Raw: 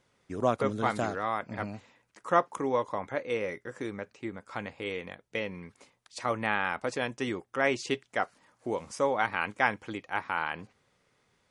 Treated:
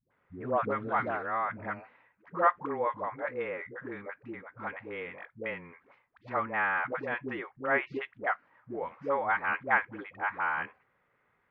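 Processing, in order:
low-pass filter 1,900 Hz 24 dB per octave
tilt shelving filter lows −6.5 dB, about 920 Hz
all-pass dispersion highs, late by 111 ms, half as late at 400 Hz

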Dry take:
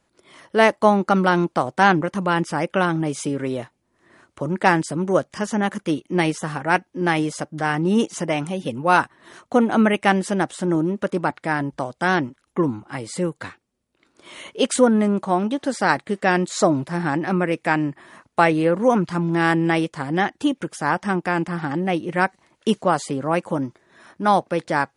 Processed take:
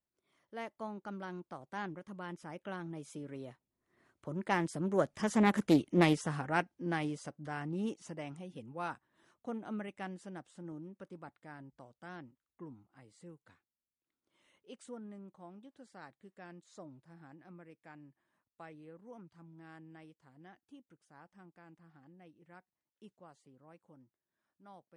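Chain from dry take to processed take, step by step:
source passing by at 0:05.70, 11 m/s, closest 4.1 metres
low-shelf EQ 260 Hz +5 dB
highs frequency-modulated by the lows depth 0.23 ms
level −5.5 dB

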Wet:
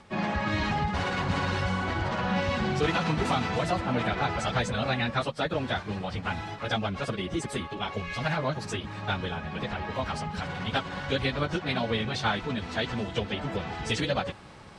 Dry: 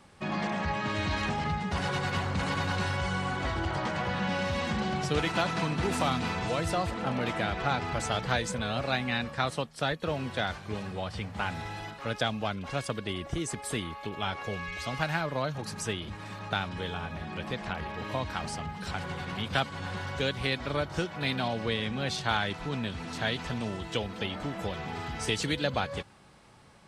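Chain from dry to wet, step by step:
reversed playback
upward compression, threshold −42 dBFS
reversed playback
time stretch by phase vocoder 0.55×
high-frequency loss of the air 55 metres
level +6 dB

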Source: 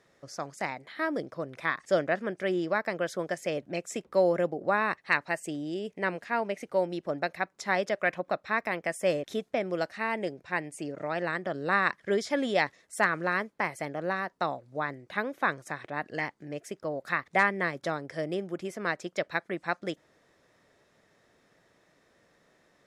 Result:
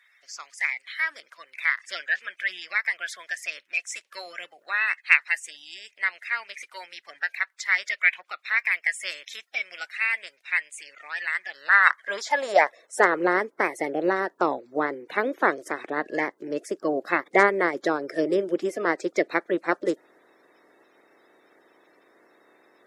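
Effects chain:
spectral magnitudes quantised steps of 30 dB
high-pass filter sweep 2,200 Hz → 340 Hz, 0:11.42–0:13.25
level +5 dB

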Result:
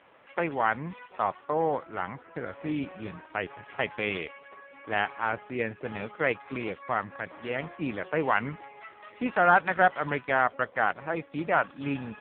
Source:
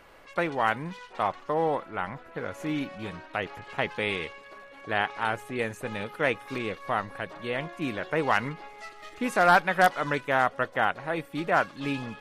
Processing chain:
AMR narrowband 5.9 kbit/s 8,000 Hz

